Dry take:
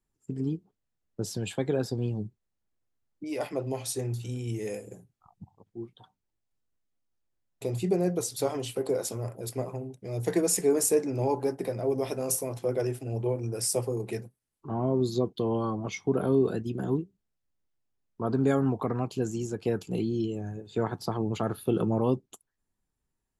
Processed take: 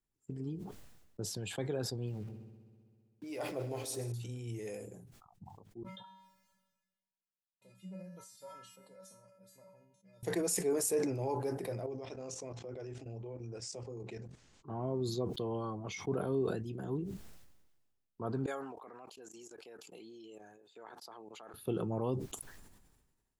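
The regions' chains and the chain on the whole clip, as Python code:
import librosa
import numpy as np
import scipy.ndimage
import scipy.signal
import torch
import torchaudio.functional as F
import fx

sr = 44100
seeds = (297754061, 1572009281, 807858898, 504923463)

y = fx.chain(x, sr, fx.sample_gate(floor_db=-48.0),
    fx.echo_heads(ms=65, heads='first and second', feedback_pct=74, wet_db=-17.5), at=(2.07, 4.12))
y = fx.chain(y, sr, fx.peak_eq(hz=1300.0, db=8.0, octaves=2.3),
    fx.comb_fb(f0_hz=190.0, decay_s=0.42, harmonics='odd', damping=0.0, mix_pct=100), at=(5.83, 10.23))
y = fx.chain(y, sr, fx.cheby1_lowpass(hz=7000.0, order=4),
    fx.level_steps(step_db=12), at=(11.86, 14.68))
y = fx.chain(y, sr, fx.highpass(hz=560.0, slope=12),
    fx.level_steps(step_db=22), at=(18.46, 21.54))
y = fx.dynamic_eq(y, sr, hz=240.0, q=1.6, threshold_db=-38.0, ratio=4.0, max_db=-4)
y = fx.sustainer(y, sr, db_per_s=44.0)
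y = F.gain(torch.from_numpy(y), -8.0).numpy()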